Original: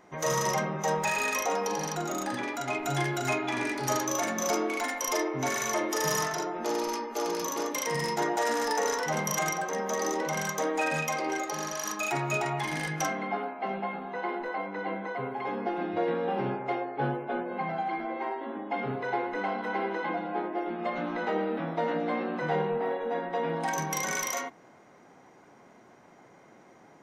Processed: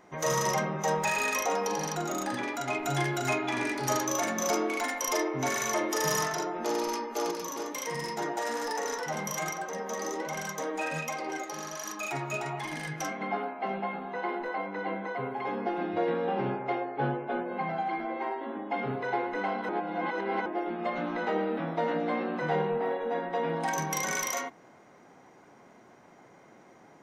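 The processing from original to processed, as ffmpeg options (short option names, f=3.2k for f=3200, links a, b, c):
-filter_complex "[0:a]asettb=1/sr,asplit=3[a][b][c];[a]atrim=end=7.314[d];[b]atrim=start=7.31:end=13.21,asetpts=PTS-STARTPTS,afade=t=in:d=0.004:c=qsin,afade=t=out:st=5.896:d=0.004:c=qsin,flanger=delay=2.5:depth=7.8:regen=63:speed=1.3:shape=triangular[e];[c]atrim=start=13.206[f];[d][e]acrossfade=d=0.004:c1=hsin:c2=qsin[g];[g][f]acrossfade=d=0.004:c1=qsin:c2=hsin,asettb=1/sr,asplit=3[h][i][j];[h]atrim=end=16.294[k];[i]atrim=start=16.29:end=17.28,asetpts=PTS-STARTPTS,afade=t=in:d=0.004:c=qsin,afade=t=out:st=0.986:d=0.004:c=qsin,lowpass=5.5k[l];[j]atrim=start=17.276[m];[k][l]acrossfade=d=0.004:c1=hsin:c2=qsin[n];[n][m]acrossfade=d=0.004:c1=qsin:c2=hsin,asplit=3[o][p][q];[o]atrim=end=19.692[r];[p]atrim=start=19.688:end=20.462,asetpts=PTS-STARTPTS,areverse[s];[q]atrim=start=20.458[t];[r][s]acrossfade=d=0.004:c1=hsin:c2=hsin[u];[u][t]acrossfade=d=0.004:c1=hsin:c2=hsin"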